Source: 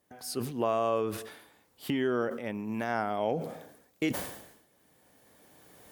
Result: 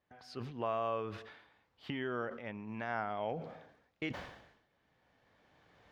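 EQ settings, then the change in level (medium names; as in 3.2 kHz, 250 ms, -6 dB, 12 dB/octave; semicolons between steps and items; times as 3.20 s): distance through air 220 m; peaking EQ 310 Hz -9.5 dB 2.4 oct; treble shelf 7.7 kHz -6 dB; -1.0 dB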